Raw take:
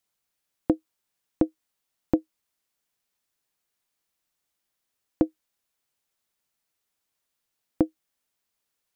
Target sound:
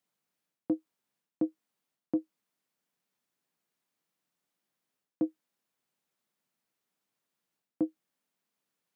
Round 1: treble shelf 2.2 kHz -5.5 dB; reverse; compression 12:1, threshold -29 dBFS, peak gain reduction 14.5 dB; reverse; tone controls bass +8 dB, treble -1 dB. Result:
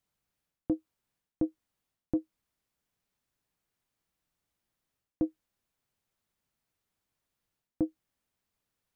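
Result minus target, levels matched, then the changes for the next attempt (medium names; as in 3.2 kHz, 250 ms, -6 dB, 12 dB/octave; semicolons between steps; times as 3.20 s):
125 Hz band +7.0 dB
add first: high-pass 160 Hz 24 dB/octave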